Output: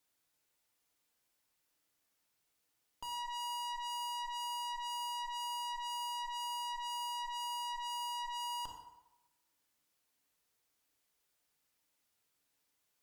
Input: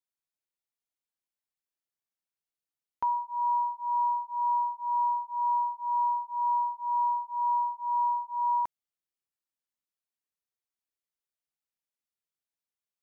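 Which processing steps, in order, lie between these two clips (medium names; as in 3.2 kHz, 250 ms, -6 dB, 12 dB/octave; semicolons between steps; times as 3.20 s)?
valve stage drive 45 dB, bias 0.55; FDN reverb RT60 0.98 s, low-frequency decay 0.8×, high-frequency decay 0.65×, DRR 5 dB; peak limiter -51.5 dBFS, peak gain reduction 10 dB; trim +14.5 dB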